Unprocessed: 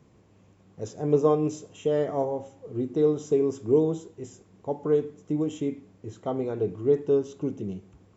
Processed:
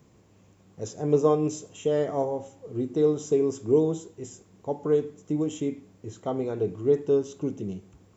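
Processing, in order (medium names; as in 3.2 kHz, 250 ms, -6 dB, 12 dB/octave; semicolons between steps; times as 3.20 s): treble shelf 6.7 kHz +11 dB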